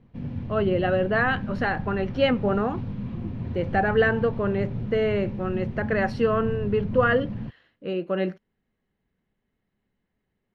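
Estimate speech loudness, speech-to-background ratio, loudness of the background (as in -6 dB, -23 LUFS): -25.0 LUFS, 8.0 dB, -33.0 LUFS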